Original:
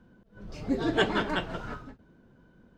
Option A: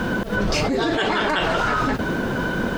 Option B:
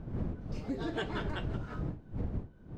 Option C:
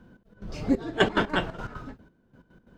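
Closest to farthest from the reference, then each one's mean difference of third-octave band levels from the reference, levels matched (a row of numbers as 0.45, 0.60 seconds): C, B, A; 3.5, 7.0, 14.5 decibels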